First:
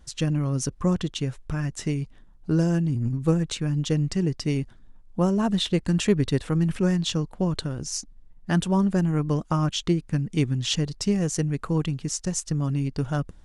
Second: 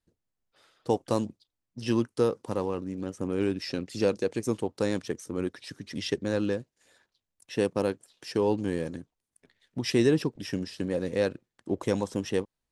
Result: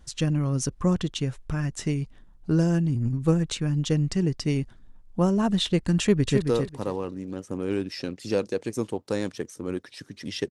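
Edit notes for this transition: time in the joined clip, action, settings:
first
0:06.00–0:06.42: delay throw 270 ms, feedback 20%, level −6 dB
0:06.42: continue with second from 0:02.12

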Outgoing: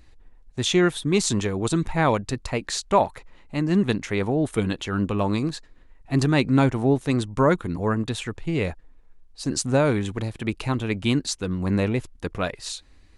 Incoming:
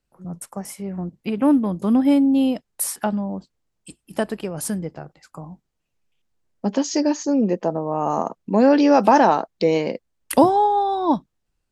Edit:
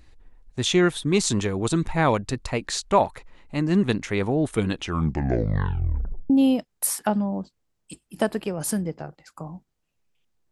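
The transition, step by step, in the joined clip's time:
outgoing
0:04.72: tape stop 1.58 s
0:06.30: continue with incoming from 0:02.27

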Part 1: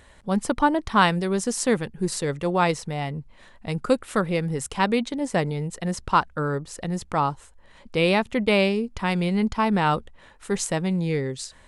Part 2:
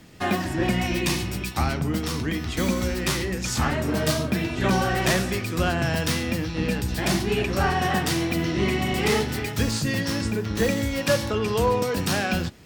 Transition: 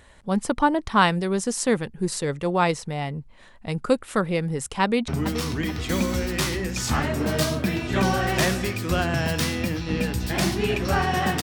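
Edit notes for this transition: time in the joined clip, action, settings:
part 1
0:04.82–0:05.08: delay throw 430 ms, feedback 45%, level −12 dB
0:05.08: continue with part 2 from 0:01.76

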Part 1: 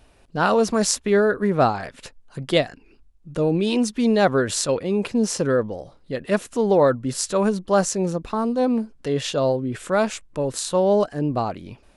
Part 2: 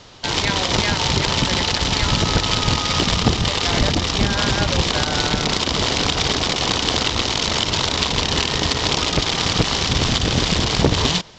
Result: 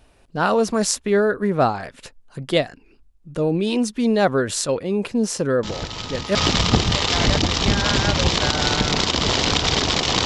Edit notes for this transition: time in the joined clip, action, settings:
part 1
0:05.63: mix in part 2 from 0:02.16 0.72 s −11.5 dB
0:06.35: continue with part 2 from 0:02.88

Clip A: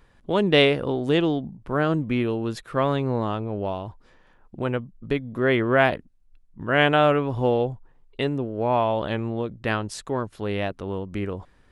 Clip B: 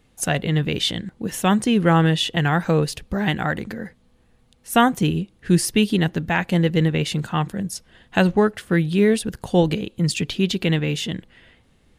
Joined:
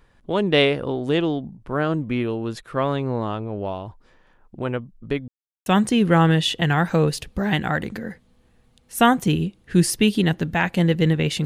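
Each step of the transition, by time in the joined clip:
clip A
0:05.28–0:05.66: silence
0:05.66: continue with clip B from 0:01.41

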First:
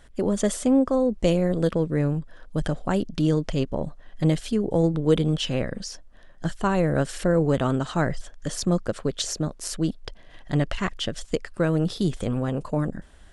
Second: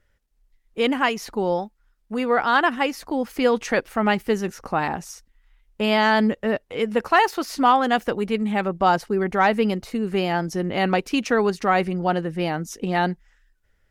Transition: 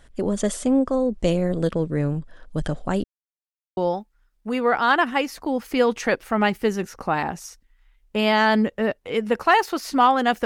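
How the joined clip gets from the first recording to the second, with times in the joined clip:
first
0:03.04–0:03.77: silence
0:03.77: continue with second from 0:01.42

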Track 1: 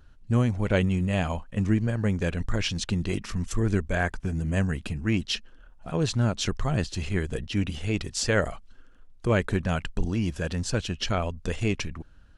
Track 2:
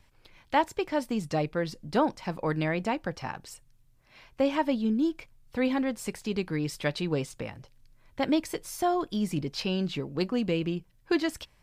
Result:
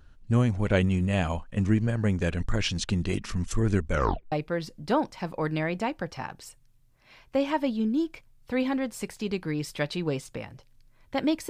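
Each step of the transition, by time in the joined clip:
track 1
0:03.91: tape stop 0.41 s
0:04.32: continue with track 2 from 0:01.37

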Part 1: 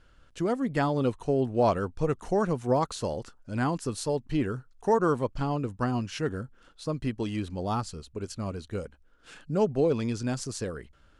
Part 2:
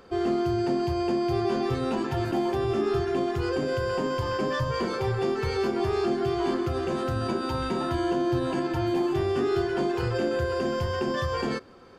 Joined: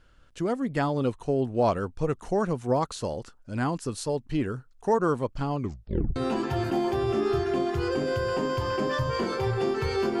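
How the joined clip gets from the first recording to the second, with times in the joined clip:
part 1
0:05.56: tape stop 0.60 s
0:06.16: continue with part 2 from 0:01.77

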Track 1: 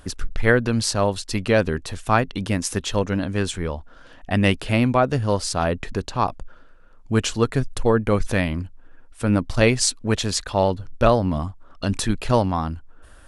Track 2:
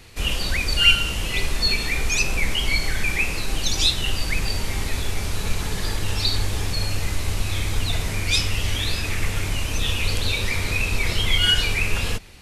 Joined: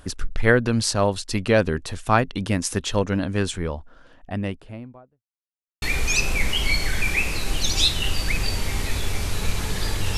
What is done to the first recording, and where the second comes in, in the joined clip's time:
track 1
0:03.37–0:05.23: fade out and dull
0:05.23–0:05.82: silence
0:05.82: continue with track 2 from 0:01.84

